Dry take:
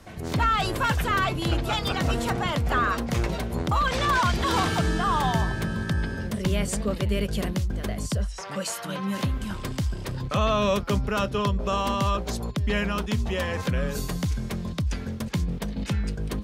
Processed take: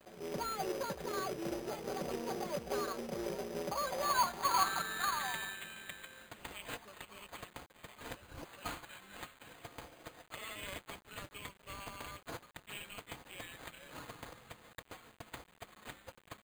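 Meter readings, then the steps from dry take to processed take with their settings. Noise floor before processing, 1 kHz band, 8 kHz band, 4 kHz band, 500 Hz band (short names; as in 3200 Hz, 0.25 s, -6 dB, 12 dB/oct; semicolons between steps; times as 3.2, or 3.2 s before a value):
-36 dBFS, -11.5 dB, -9.0 dB, -12.5 dB, -12.5 dB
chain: comb 5.2 ms, depth 67%; band-pass sweep 470 Hz -> 5100 Hz, 3.53–6.46; careless resampling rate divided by 8×, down none, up hold; companded quantiser 4-bit; gain -5.5 dB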